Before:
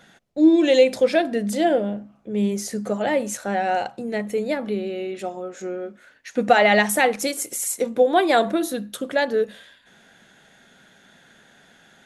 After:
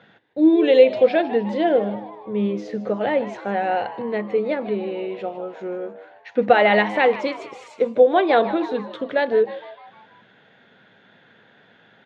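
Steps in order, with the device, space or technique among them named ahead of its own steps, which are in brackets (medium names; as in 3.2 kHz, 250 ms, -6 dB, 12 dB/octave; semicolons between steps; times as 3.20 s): frequency-shifting delay pedal into a guitar cabinet (frequency-shifting echo 154 ms, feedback 53%, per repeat +110 Hz, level -15 dB; cabinet simulation 110–3600 Hz, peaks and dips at 110 Hz +9 dB, 470 Hz +6 dB, 1 kHz +3 dB); trim -1 dB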